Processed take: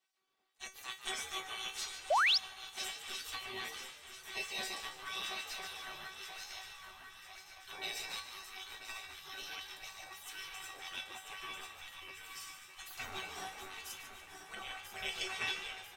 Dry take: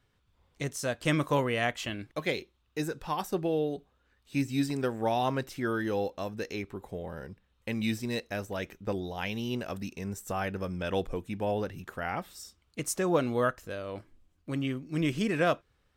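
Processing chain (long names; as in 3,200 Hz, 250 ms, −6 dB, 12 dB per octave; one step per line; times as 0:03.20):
feedback delay that plays each chunk backwards 496 ms, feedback 78%, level −7.5 dB
gate on every frequency bin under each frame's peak −20 dB weak
dynamic equaliser 4,100 Hz, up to +6 dB, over −50 dBFS, Q 0.86
tuned comb filter 380 Hz, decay 0.24 s, harmonics all, mix 90%
echo with shifted repeats 146 ms, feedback 45%, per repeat +71 Hz, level −10 dB
sound drawn into the spectrogram rise, 0:02.10–0:02.38, 540–5,800 Hz −38 dBFS
level +10 dB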